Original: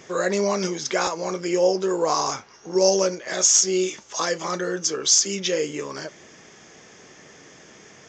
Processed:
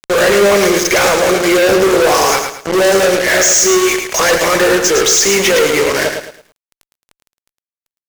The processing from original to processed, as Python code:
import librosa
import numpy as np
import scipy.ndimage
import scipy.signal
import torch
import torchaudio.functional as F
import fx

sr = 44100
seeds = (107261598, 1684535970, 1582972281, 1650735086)

y = fx.graphic_eq(x, sr, hz=(125, 250, 500, 1000, 2000, 4000), db=(-11, -5, 7, -7, 11, -10))
y = fx.fuzz(y, sr, gain_db=38.0, gate_db=-35.0)
y = fx.echo_crushed(y, sr, ms=109, feedback_pct=35, bits=8, wet_db=-6.0)
y = y * librosa.db_to_amplitude(3.5)